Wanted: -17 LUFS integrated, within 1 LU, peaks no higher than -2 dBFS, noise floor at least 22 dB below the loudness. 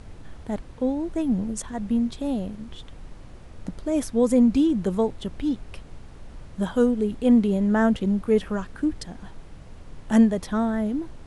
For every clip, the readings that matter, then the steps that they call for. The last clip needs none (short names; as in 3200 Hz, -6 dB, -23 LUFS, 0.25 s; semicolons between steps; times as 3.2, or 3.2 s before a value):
noise floor -44 dBFS; noise floor target -46 dBFS; loudness -23.5 LUFS; peak -7.5 dBFS; loudness target -17.0 LUFS
-> noise print and reduce 6 dB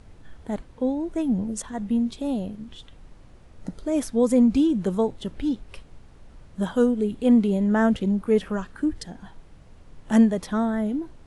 noise floor -49 dBFS; loudness -23.5 LUFS; peak -7.5 dBFS; loudness target -17.0 LUFS
-> gain +6.5 dB; limiter -2 dBFS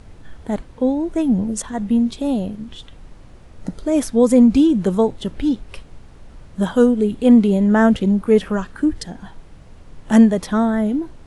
loudness -17.5 LUFS; peak -2.0 dBFS; noise floor -43 dBFS